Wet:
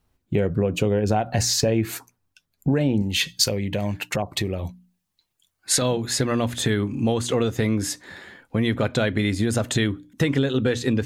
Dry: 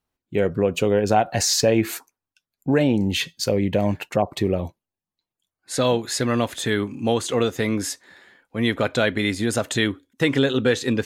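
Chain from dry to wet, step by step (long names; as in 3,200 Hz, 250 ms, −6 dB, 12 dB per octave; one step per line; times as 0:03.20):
low-shelf EQ 190 Hz +12 dB
mains-hum notches 60/120/180/240/300 Hz
downward compressor 3 to 1, threshold −30 dBFS, peak gain reduction 14.5 dB
0:03.02–0:05.82: tilt shelving filter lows −5.5 dB, about 1,100 Hz
level +7.5 dB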